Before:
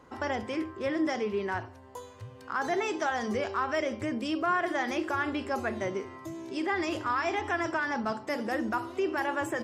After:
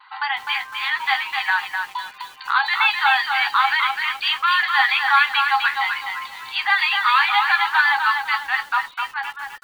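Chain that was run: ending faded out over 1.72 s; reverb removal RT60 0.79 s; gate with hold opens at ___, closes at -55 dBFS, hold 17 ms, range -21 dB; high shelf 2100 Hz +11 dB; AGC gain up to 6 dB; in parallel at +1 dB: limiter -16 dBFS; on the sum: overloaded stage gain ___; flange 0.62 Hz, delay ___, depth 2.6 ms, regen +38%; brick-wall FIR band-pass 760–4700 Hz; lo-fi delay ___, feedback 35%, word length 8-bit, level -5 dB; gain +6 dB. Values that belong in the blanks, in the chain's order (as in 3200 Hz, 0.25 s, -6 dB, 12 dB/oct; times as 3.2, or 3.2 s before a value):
-51 dBFS, 13.5 dB, 9.8 ms, 0.254 s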